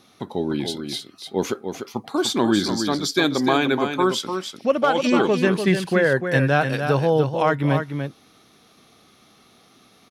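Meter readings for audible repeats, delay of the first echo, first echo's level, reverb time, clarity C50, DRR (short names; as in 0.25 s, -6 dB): 1, 0.296 s, -7.0 dB, none, none, none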